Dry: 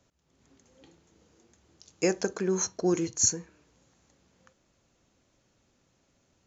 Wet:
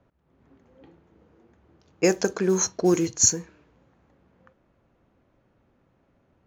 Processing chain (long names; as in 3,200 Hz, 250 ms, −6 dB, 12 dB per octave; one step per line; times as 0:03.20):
noise that follows the level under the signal 30 dB
low-pass that shuts in the quiet parts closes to 1,600 Hz, open at −23.5 dBFS
level +5.5 dB